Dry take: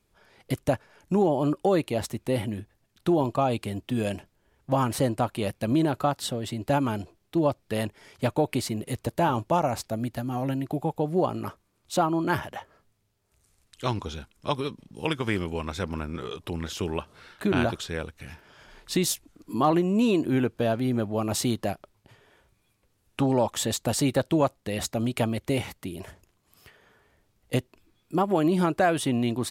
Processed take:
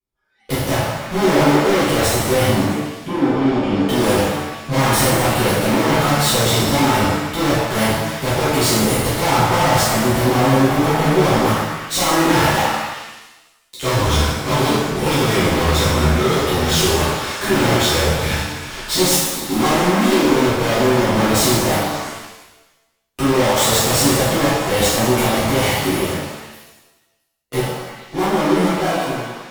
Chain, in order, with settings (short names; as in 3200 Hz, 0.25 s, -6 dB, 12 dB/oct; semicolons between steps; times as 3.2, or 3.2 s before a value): ending faded out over 5.95 s; spectral noise reduction 20 dB; sample leveller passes 5; 2.46–3.82 vocal tract filter i; soft clip -29 dBFS, distortion -7 dB; delay with a stepping band-pass 0.111 s, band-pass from 740 Hz, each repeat 0.7 oct, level -5 dB; shimmer reverb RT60 1 s, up +7 st, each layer -8 dB, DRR -11 dB; gain +3 dB